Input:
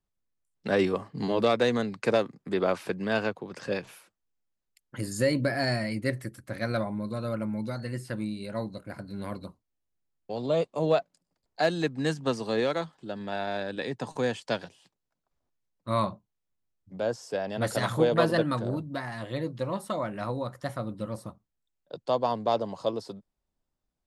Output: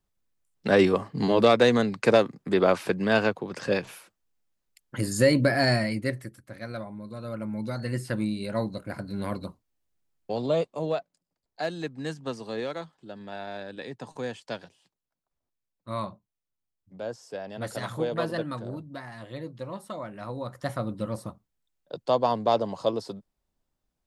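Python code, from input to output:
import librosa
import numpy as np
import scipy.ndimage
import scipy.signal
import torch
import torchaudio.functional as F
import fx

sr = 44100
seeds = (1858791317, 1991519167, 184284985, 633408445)

y = fx.gain(x, sr, db=fx.line((5.76, 5.0), (6.54, -7.0), (7.05, -7.0), (7.94, 4.5), (10.31, 4.5), (10.99, -5.5), (20.21, -5.5), (20.7, 3.0)))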